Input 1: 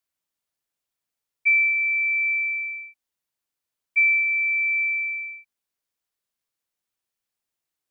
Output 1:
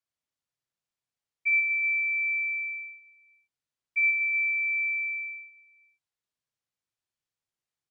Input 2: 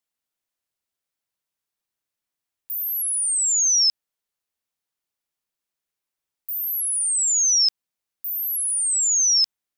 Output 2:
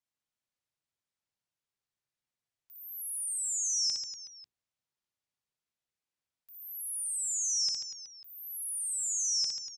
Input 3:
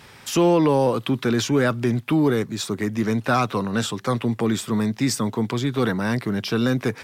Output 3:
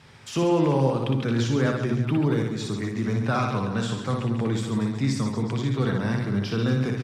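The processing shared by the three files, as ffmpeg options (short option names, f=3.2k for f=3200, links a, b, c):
-filter_complex "[0:a]lowpass=8k,equalizer=f=120:w=1.3:g=9,bandreject=f=60:t=h:w=6,bandreject=f=120:t=h:w=6,bandreject=f=180:t=h:w=6,bandreject=f=240:t=h:w=6,bandreject=f=300:t=h:w=6,bandreject=f=360:t=h:w=6,bandreject=f=420:t=h:w=6,acrossover=split=3900[a][b];[b]acompressor=threshold=-28dB:ratio=4:attack=1:release=60[c];[a][c]amix=inputs=2:normalize=0,aecho=1:1:60|138|239.4|371.2|542.6:0.631|0.398|0.251|0.158|0.1,volume=-7dB"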